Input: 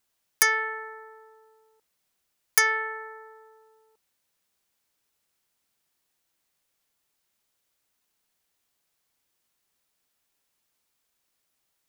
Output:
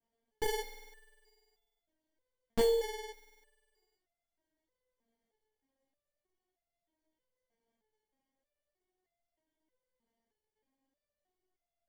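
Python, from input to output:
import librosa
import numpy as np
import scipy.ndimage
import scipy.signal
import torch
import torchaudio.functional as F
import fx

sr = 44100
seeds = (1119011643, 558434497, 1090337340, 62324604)

y = fx.room_early_taps(x, sr, ms=(18, 35), db=(-3.0, -8.0))
y = fx.sample_hold(y, sr, seeds[0], rate_hz=1300.0, jitter_pct=0)
y = fx.resonator_held(y, sr, hz=3.2, low_hz=230.0, high_hz=690.0)
y = y * 10.0 ** (2.5 / 20.0)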